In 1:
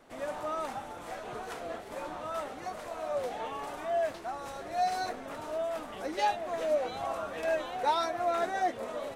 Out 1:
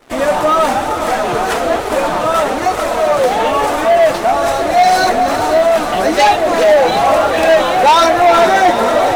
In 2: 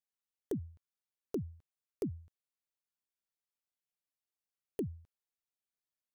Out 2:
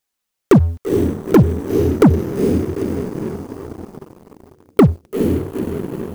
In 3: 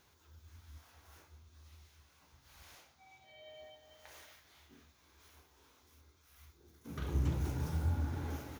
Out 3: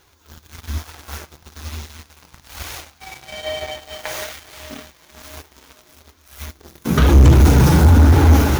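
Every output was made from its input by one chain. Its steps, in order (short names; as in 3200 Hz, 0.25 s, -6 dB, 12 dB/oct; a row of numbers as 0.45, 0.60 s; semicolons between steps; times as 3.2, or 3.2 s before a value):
diffused feedback echo 0.457 s, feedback 61%, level -10 dB; flange 1.1 Hz, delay 2.1 ms, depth 4.1 ms, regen -30%; sample leveller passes 3; normalise peaks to -3 dBFS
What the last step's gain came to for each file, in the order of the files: +16.0, +25.5, +21.0 dB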